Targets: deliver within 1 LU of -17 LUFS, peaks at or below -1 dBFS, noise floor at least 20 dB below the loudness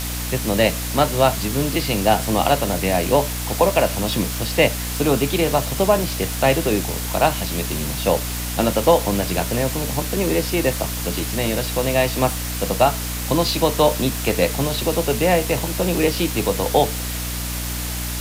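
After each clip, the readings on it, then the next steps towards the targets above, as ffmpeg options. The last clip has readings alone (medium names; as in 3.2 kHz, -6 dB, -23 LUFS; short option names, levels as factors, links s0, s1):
hum 60 Hz; highest harmonic 300 Hz; hum level -26 dBFS; noise floor -26 dBFS; noise floor target -40 dBFS; loudness -20.0 LUFS; peak level -2.5 dBFS; loudness target -17.0 LUFS
-> -af "bandreject=f=60:t=h:w=6,bandreject=f=120:t=h:w=6,bandreject=f=180:t=h:w=6,bandreject=f=240:t=h:w=6,bandreject=f=300:t=h:w=6"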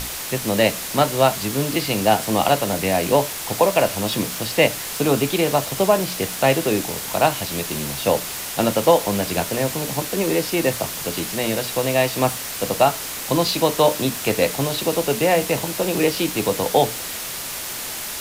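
hum not found; noise floor -30 dBFS; noise floor target -41 dBFS
-> -af "afftdn=nr=11:nf=-30"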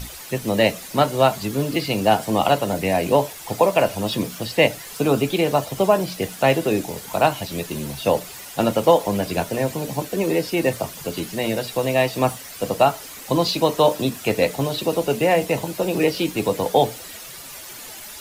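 noise floor -38 dBFS; noise floor target -41 dBFS
-> -af "afftdn=nr=6:nf=-38"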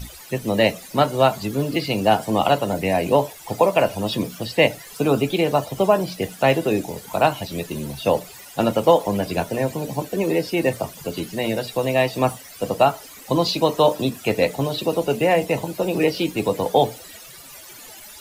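noise floor -42 dBFS; loudness -21.5 LUFS; peak level -3.5 dBFS; loudness target -17.0 LUFS
-> -af "volume=1.68,alimiter=limit=0.891:level=0:latency=1"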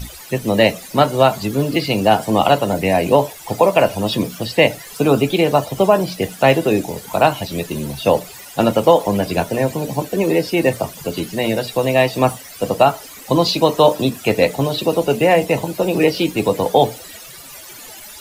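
loudness -17.0 LUFS; peak level -1.0 dBFS; noise floor -37 dBFS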